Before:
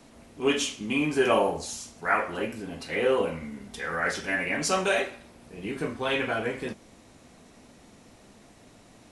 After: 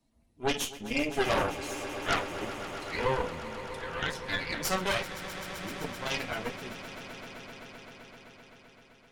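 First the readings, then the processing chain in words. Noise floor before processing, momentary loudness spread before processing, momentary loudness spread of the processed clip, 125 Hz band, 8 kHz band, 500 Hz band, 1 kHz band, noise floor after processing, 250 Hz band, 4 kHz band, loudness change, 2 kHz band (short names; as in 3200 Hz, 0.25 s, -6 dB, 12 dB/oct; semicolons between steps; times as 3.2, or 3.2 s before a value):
-54 dBFS, 13 LU, 17 LU, -1.0 dB, -4.0 dB, -6.5 dB, -3.0 dB, -60 dBFS, -6.0 dB, -1.0 dB, -5.0 dB, -4.5 dB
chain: per-bin expansion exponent 1.5; added harmonics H 5 -21 dB, 8 -9 dB, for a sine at -10 dBFS; swelling echo 0.129 s, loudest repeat 5, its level -15.5 dB; gain -7.5 dB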